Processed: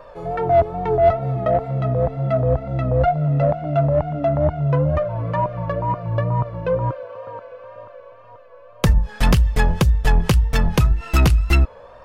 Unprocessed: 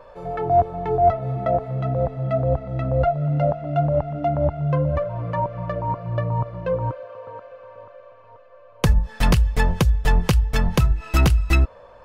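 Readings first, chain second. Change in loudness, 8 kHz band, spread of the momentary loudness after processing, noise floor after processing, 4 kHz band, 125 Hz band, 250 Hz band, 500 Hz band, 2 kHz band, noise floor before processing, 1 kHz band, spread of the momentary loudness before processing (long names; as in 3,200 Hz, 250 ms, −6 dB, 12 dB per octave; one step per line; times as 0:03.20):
+2.5 dB, can't be measured, 7 LU, −44 dBFS, +1.5 dB, +2.5 dB, +2.0 dB, +3.0 dB, +2.0 dB, −47 dBFS, +1.0 dB, 7 LU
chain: in parallel at −3.5 dB: soft clipping −16.5 dBFS, distortion −12 dB
on the sum: tape wow and flutter 62 cents
level −1 dB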